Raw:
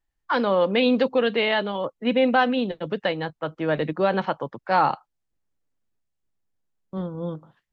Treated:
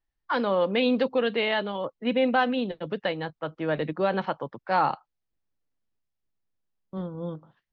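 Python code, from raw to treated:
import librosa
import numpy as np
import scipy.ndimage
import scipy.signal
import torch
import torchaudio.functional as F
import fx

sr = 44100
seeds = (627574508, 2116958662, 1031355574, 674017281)

y = scipy.signal.sosfilt(scipy.signal.butter(4, 5800.0, 'lowpass', fs=sr, output='sos'), x)
y = y * librosa.db_to_amplitude(-3.5)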